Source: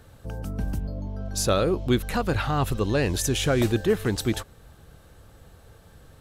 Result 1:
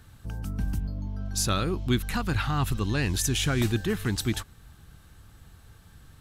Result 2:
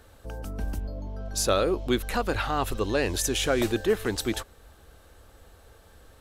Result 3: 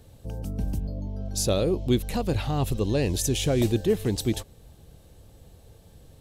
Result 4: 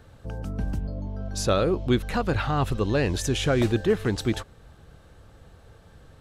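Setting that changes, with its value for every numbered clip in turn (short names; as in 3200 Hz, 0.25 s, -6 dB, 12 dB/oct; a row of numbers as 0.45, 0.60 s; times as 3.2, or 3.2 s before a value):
bell, frequency: 530, 140, 1400, 15000 Hz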